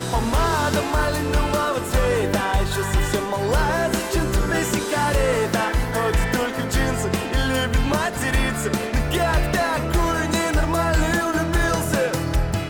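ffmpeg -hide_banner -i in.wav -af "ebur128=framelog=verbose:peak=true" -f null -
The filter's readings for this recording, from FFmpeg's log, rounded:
Integrated loudness:
  I:         -21.5 LUFS
  Threshold: -31.5 LUFS
Loudness range:
  LRA:         0.9 LU
  Threshold: -41.5 LUFS
  LRA low:   -22.0 LUFS
  LRA high:  -21.1 LUFS
True peak:
  Peak:      -10.5 dBFS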